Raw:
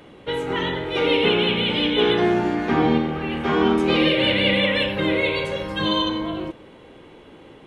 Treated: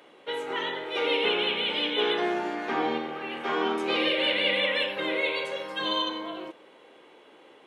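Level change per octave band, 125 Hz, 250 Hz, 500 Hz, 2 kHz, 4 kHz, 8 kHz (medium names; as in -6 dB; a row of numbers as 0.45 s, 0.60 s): -22.0 dB, -12.5 dB, -7.5 dB, -4.5 dB, -4.5 dB, no reading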